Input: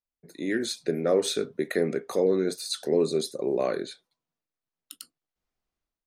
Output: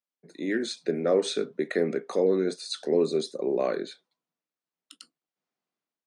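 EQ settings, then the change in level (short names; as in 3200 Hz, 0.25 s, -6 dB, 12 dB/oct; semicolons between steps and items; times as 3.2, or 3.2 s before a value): HPF 160 Hz 24 dB/oct; steep low-pass 9600 Hz 36 dB/oct; high shelf 7500 Hz -10 dB; 0.0 dB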